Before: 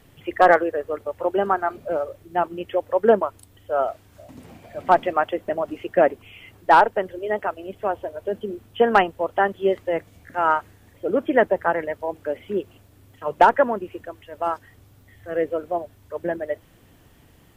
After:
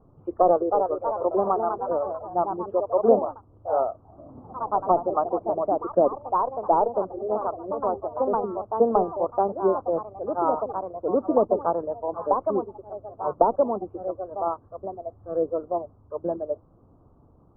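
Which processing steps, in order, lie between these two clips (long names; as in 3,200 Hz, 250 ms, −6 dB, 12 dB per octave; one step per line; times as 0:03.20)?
delay with pitch and tempo change per echo 361 ms, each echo +2 semitones, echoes 3, each echo −6 dB
treble cut that deepens with the level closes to 710 Hz, closed at −13 dBFS
elliptic low-pass filter 1,200 Hz, stop band 40 dB
level −1.5 dB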